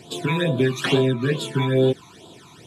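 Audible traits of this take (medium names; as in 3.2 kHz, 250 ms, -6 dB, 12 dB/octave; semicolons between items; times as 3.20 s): phasing stages 12, 2.3 Hz, lowest notch 510–2000 Hz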